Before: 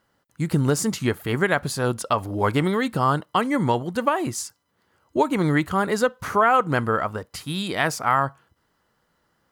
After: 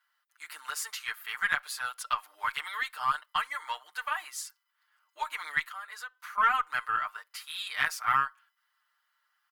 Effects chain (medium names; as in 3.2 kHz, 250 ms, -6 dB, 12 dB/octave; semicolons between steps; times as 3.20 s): high-pass 1.2 kHz 24 dB/octave; peaking EQ 7.1 kHz -7 dB 1.3 oct; comb 6.6 ms, depth 94%; 5.64–6.38 s: compression 2.5:1, threshold -39 dBFS, peak gain reduction 12 dB; Chebyshev shaper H 4 -28 dB, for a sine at -5.5 dBFS; trim -5 dB